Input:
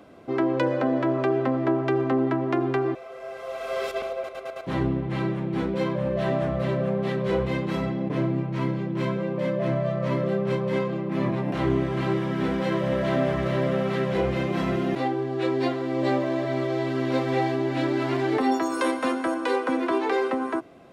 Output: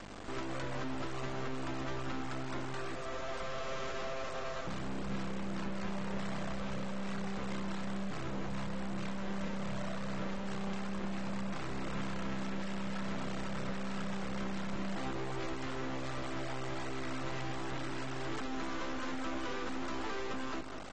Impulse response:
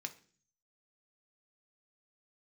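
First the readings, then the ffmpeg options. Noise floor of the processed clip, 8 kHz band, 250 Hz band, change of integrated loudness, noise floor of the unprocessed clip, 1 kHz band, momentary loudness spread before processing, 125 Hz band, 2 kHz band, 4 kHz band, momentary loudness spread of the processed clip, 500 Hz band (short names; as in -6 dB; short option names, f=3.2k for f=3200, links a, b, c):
-38 dBFS, n/a, -14.0 dB, -14.0 dB, -39 dBFS, -12.0 dB, 4 LU, -14.0 dB, -9.5 dB, -6.5 dB, 1 LU, -17.5 dB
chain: -filter_complex "[0:a]equalizer=f=200:t=o:w=0.33:g=9,equalizer=f=1.25k:t=o:w=0.33:g=9,equalizer=f=2.5k:t=o:w=0.33:g=-6,equalizer=f=4k:t=o:w=0.33:g=-11,equalizer=f=8k:t=o:w=0.33:g=-6,acrossover=split=220|1100[a][b][c];[b]alimiter=level_in=0.5dB:limit=-24dB:level=0:latency=1:release=16,volume=-0.5dB[d];[a][d][c]amix=inputs=3:normalize=0,acrossover=split=240|970|3700[e][f][g][h];[e]acompressor=threshold=-27dB:ratio=4[i];[f]acompressor=threshold=-35dB:ratio=4[j];[g]acompressor=threshold=-38dB:ratio=4[k];[h]acompressor=threshold=-54dB:ratio=4[l];[i][j][k][l]amix=inputs=4:normalize=0,aeval=exprs='val(0)+0.00224*(sin(2*PI*50*n/s)+sin(2*PI*2*50*n/s)/2+sin(2*PI*3*50*n/s)/3+sin(2*PI*4*50*n/s)/4+sin(2*PI*5*50*n/s)/5)':c=same,asoftclip=type=hard:threshold=-34.5dB,acrusher=bits=5:dc=4:mix=0:aa=0.000001,asplit=2[m][n];[n]adelay=203,lowpass=f=2.7k:p=1,volume=-10.5dB,asplit=2[o][p];[p]adelay=203,lowpass=f=2.7k:p=1,volume=0.39,asplit=2[q][r];[r]adelay=203,lowpass=f=2.7k:p=1,volume=0.39,asplit=2[s][t];[t]adelay=203,lowpass=f=2.7k:p=1,volume=0.39[u];[o][q][s][u]amix=inputs=4:normalize=0[v];[m][v]amix=inputs=2:normalize=0,volume=2dB" -ar 32000 -c:a aac -b:a 24k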